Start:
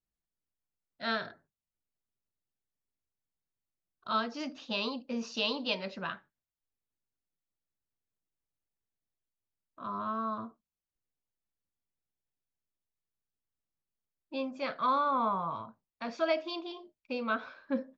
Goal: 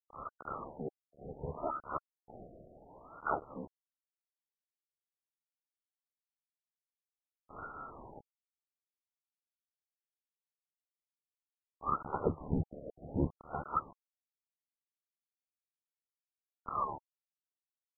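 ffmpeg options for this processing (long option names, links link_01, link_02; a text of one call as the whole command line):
ffmpeg -i in.wav -af "areverse,lowpass=frequency=2500:width_type=q:width=0.5098,lowpass=frequency=2500:width_type=q:width=0.6013,lowpass=frequency=2500:width_type=q:width=0.9,lowpass=frequency=2500:width_type=q:width=2.563,afreqshift=-2900,equalizer=frequency=120:width=3.7:gain=11,aeval=exprs='val(0)*sin(2*PI*36*n/s)':channel_layout=same,acrusher=bits=7:mix=0:aa=0.000001,acompressor=threshold=-37dB:ratio=10,afftfilt=real='re*lt(b*sr/1024,710*pow(1500/710,0.5+0.5*sin(2*PI*0.68*pts/sr)))':imag='im*lt(b*sr/1024,710*pow(1500/710,0.5+0.5*sin(2*PI*0.68*pts/sr)))':win_size=1024:overlap=0.75,volume=17dB" out.wav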